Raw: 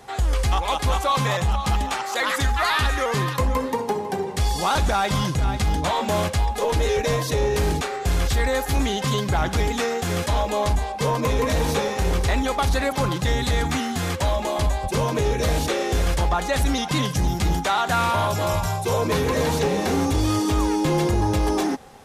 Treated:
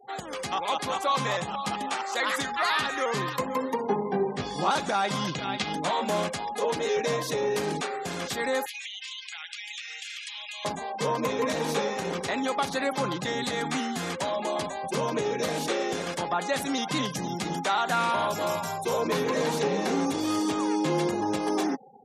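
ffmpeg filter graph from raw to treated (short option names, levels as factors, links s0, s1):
-filter_complex "[0:a]asettb=1/sr,asplit=3[s0][s1][s2];[s0]atrim=end=3.824[s3];[s1]atrim=start=3.82:end=4.71,asetpts=PTS-STARTPTS,afade=t=in:d=0.004:c=qsin,afade=t=out:st=0.886:d=0.004:c=qsin,lowpass=f=2600:p=1,lowshelf=f=210:g=7,asplit=2[s4][s5];[s5]adelay=20,volume=0.794[s6];[s4][s6]amix=inputs=2:normalize=0,atrim=end_sample=39249[s7];[s2]atrim=start=4.706[s8];[s3][s7]acrossfade=d=0.004:c1=hsin:c2=qsin[s9];[s9][s8]acrossfade=d=0.004:c1=qsin:c2=hsin,asettb=1/sr,asplit=3[s10][s11][s12];[s10]atrim=end=5.274[s13];[s11]atrim=start=5.27:end=5.73,asetpts=PTS-STARTPTS,afade=t=in:d=0.004:c=qsin,afade=t=out:st=0.456:d=0.004:c=qsin,lowpass=7000,equalizer=f=3100:t=o:w=1.4:g=7.5[s14];[s12]atrim=start=5.726[s15];[s13][s14]acrossfade=d=0.004:c1=hsin:c2=qsin[s16];[s16][s15]acrossfade=d=0.004:c1=qsin:c2=hsin,asettb=1/sr,asplit=3[s17][s18][s19];[s17]atrim=end=8.664[s20];[s18]atrim=start=8.66:end=10.65,asetpts=PTS-STARTPTS,afade=t=in:d=0.004:c=qsin,afade=t=out:st=1.986:d=0.004:c=qsin,highpass=f=2600:t=q:w=2.5,acompressor=threshold=0.0355:ratio=16:attack=3.2:release=140:knee=1:detection=peak[s21];[s19]atrim=start=10.646[s22];[s20][s21]acrossfade=d=0.004:c1=hsin:c2=qsin[s23];[s23][s22]acrossfade=d=0.004:c1=qsin:c2=hsin,afftfilt=real='re*gte(hypot(re,im),0.0141)':imag='im*gte(hypot(re,im),0.0141)':win_size=1024:overlap=0.75,highpass=f=170:w=0.5412,highpass=f=170:w=1.3066,volume=0.631"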